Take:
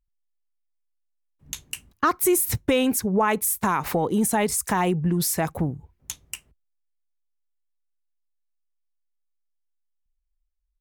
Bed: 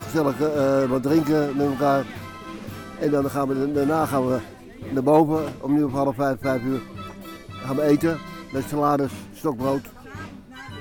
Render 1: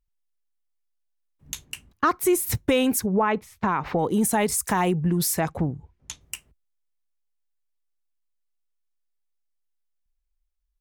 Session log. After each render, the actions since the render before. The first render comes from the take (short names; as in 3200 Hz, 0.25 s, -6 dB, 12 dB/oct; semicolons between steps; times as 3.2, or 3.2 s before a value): 1.64–2.45 high shelf 5900 Hz -> 9200 Hz -8 dB; 3.06–3.99 air absorption 230 m; 5.39–6.21 LPF 6600 Hz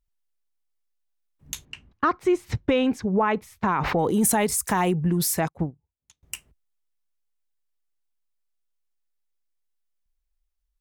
1.65–3.13 air absorption 170 m; 3.64–4.34 sustainer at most 24 dB/s; 5.48–6.23 upward expander 2.5:1, over -40 dBFS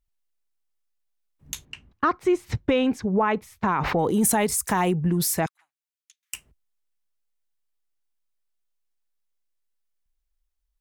5.46–6.34 inverse Chebyshev high-pass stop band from 490 Hz, stop band 60 dB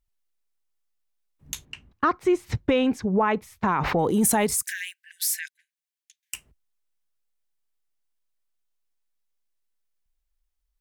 4.62–6.34 brick-wall FIR high-pass 1500 Hz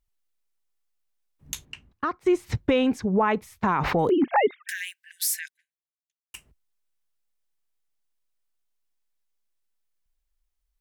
1.64–2.26 fade out, to -10.5 dB; 4.09–4.69 sine-wave speech; 5.25–6.34 studio fade out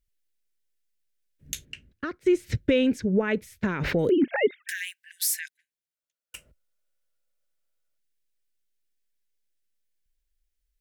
5.95–7.98 spectral gain 480–1500 Hz +11 dB; band shelf 940 Hz -15 dB 1 oct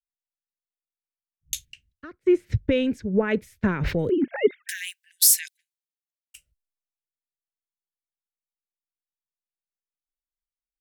vocal rider within 3 dB 0.5 s; three-band expander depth 100%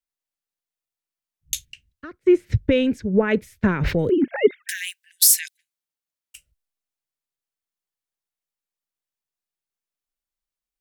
gain +3.5 dB; limiter -3 dBFS, peak gain reduction 2.5 dB